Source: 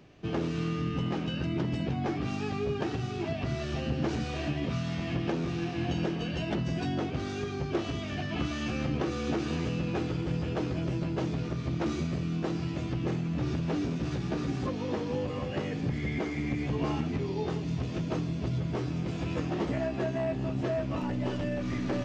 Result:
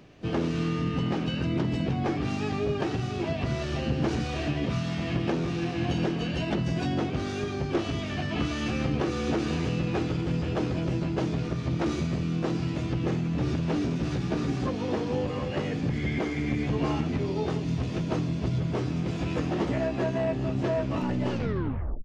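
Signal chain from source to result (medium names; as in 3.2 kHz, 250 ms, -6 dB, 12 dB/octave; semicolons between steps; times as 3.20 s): tape stop on the ending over 0.75 s; harmony voices -5 st -15 dB, +7 st -16 dB; trim +3 dB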